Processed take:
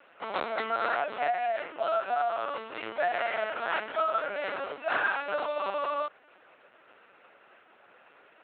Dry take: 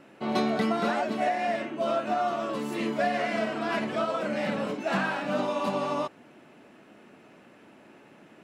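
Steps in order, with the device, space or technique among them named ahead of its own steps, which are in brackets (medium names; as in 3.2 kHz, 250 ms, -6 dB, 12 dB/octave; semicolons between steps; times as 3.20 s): talking toy (LPC vocoder at 8 kHz pitch kept; high-pass 570 Hz 12 dB/octave; peaking EQ 1.4 kHz +6.5 dB 0.37 oct)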